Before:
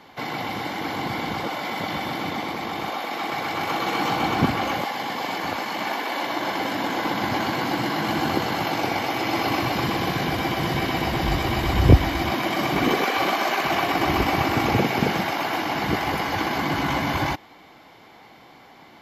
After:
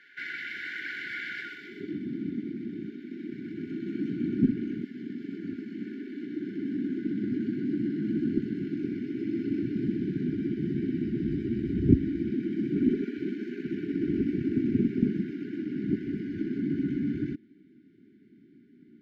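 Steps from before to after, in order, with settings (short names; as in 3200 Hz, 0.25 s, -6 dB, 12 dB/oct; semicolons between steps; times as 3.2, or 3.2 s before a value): band-pass sweep 1600 Hz -> 240 Hz, 1.4–2.01; in parallel at -9 dB: one-sided clip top -27.5 dBFS; on the sum: FFT band-reject 430–1400 Hz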